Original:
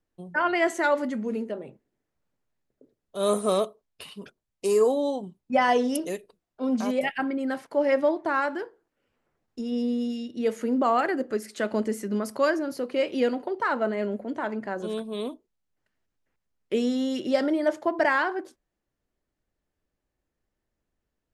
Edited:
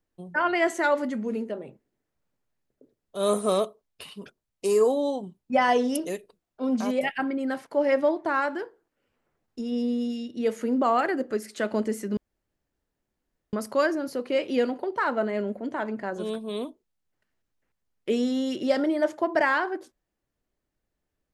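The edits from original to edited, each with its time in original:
12.17 s: insert room tone 1.36 s

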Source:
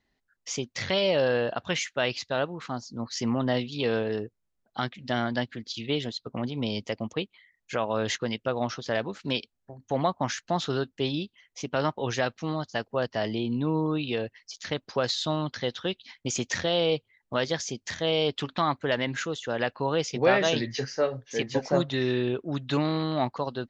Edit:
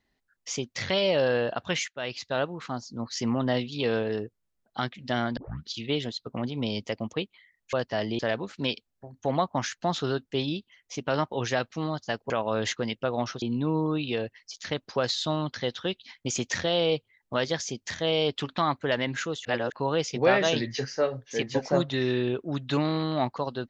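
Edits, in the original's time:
1.88–2.36 s: fade in, from -14 dB
5.37 s: tape start 0.33 s
7.73–8.85 s: swap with 12.96–13.42 s
19.45–19.72 s: reverse

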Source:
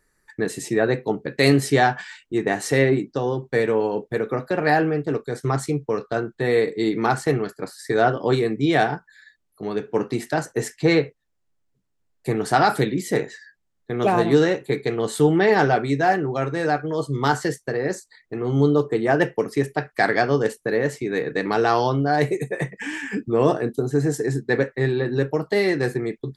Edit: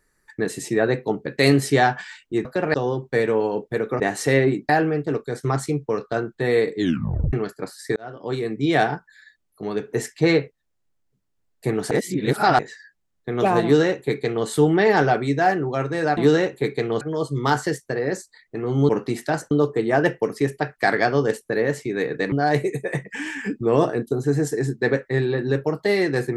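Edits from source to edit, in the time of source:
2.45–3.14 s: swap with 4.40–4.69 s
6.77 s: tape stop 0.56 s
7.96–8.75 s: fade in
9.93–10.55 s: move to 18.67 s
12.53–13.21 s: reverse
14.25–15.09 s: copy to 16.79 s
21.48–21.99 s: delete

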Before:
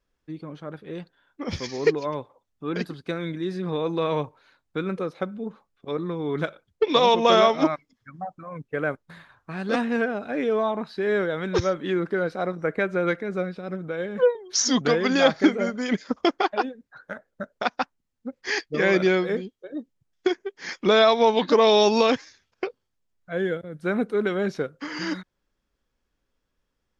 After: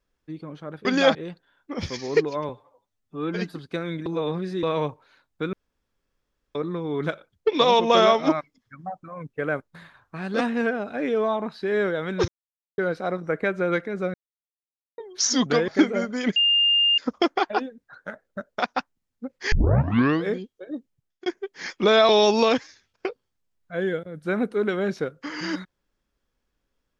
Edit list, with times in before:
2.19–2.89 s: stretch 1.5×
3.41–3.98 s: reverse
4.88–5.90 s: room tone
11.63–12.13 s: mute
13.49–14.33 s: mute
15.03–15.33 s: move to 0.85 s
16.01 s: add tone 2.81 kHz -16 dBFS 0.62 s
18.55 s: tape start 0.73 s
19.78–20.29 s: fade out equal-power
21.12–21.67 s: delete

